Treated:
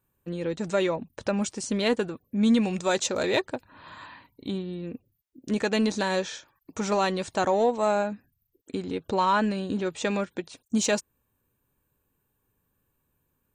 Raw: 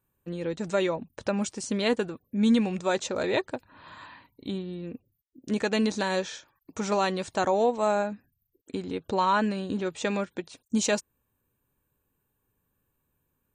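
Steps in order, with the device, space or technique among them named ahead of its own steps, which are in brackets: parallel distortion (in parallel at -13 dB: hard clip -27.5 dBFS, distortion -7 dB); 2.63–3.4 on the sum: high shelf 3800 Hz +7.5 dB

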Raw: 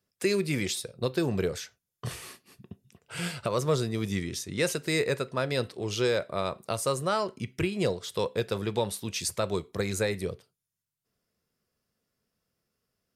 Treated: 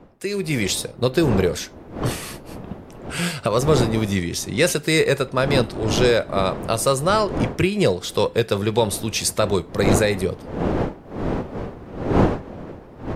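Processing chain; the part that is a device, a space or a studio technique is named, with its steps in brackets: smartphone video outdoors (wind noise 450 Hz; AGC gain up to 12.5 dB; gain -2 dB; AAC 96 kbps 44100 Hz)

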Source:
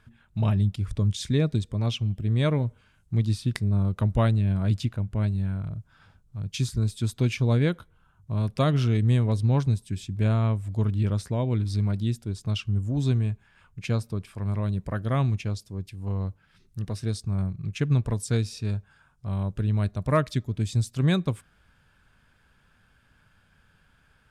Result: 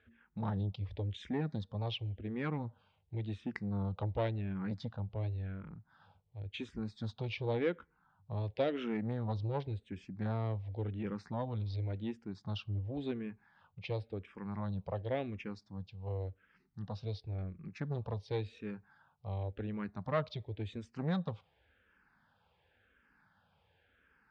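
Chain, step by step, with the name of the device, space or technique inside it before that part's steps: barber-pole phaser into a guitar amplifier (endless phaser -0.92 Hz; soft clip -22 dBFS, distortion -15 dB; speaker cabinet 77–4200 Hz, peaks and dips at 130 Hz -8 dB, 500 Hz +7 dB, 820 Hz +8 dB, 1900 Hz +3 dB); gain -5.5 dB

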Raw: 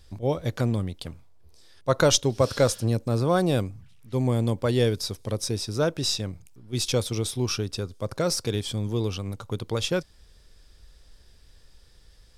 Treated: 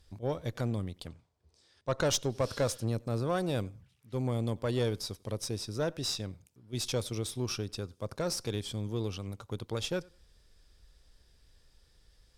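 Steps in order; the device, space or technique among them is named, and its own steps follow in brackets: 1.07–2.07 LPF 9000 Hz 24 dB/oct; rockabilly slapback (tube stage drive 16 dB, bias 0.45; tape echo 92 ms, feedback 22%, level -24 dB, low-pass 4600 Hz); gain -6 dB

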